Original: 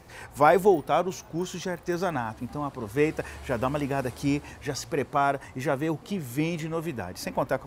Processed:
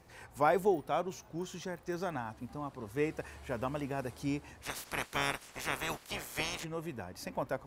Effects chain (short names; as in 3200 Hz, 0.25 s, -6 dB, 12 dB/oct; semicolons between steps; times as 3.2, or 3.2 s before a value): 4.62–6.63 spectral limiter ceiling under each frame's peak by 30 dB; gain -9 dB